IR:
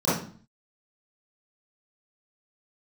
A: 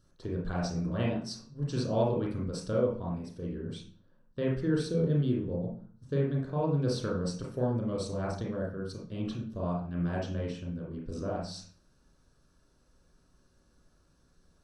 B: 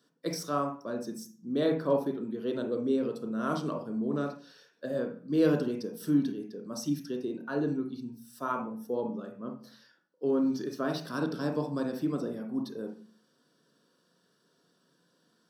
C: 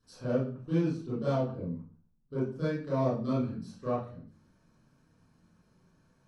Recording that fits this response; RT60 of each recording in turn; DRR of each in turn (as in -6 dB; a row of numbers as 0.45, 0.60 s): C; 0.45, 0.45, 0.45 s; -4.0, 2.5, -13.5 dB